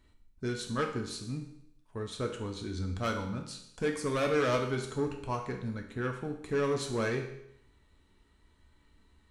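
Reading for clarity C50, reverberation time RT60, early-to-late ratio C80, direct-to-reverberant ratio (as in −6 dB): 7.5 dB, 0.75 s, 10.0 dB, 2.0 dB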